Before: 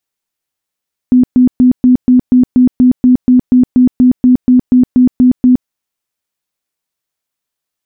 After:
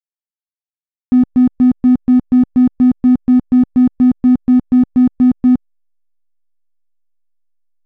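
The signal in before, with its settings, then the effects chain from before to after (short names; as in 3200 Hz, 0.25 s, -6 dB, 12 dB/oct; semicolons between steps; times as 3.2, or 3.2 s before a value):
tone bursts 251 Hz, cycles 29, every 0.24 s, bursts 19, -3 dBFS
bell 340 Hz -6.5 dB 0.49 oct; backlash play -20 dBFS; upward expander 2.5:1, over -21 dBFS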